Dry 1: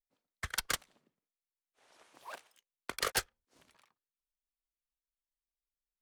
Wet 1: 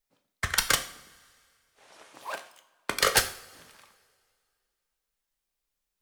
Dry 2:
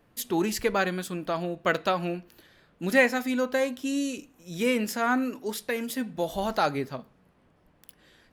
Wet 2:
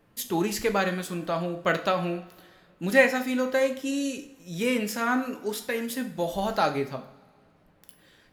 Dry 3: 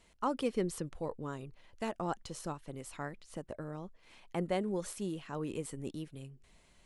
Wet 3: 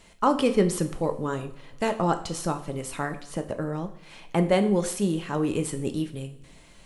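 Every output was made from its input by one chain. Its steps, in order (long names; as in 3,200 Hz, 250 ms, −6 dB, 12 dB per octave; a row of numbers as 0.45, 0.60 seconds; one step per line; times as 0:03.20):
coupled-rooms reverb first 0.47 s, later 2.2 s, from −20 dB, DRR 6.5 dB
loudness normalisation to −27 LKFS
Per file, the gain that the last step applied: +9.5, 0.0, +11.0 decibels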